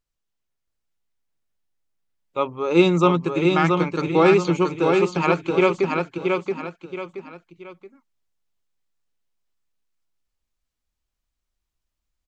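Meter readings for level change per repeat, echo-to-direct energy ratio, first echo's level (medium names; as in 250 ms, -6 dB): -9.0 dB, -3.5 dB, -4.0 dB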